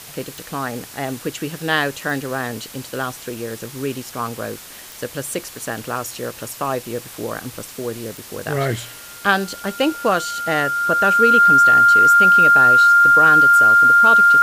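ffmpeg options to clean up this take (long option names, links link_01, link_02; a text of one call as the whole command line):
ffmpeg -i in.wav -af "adeclick=threshold=4,bandreject=frequency=1400:width=30,afwtdn=0.014" out.wav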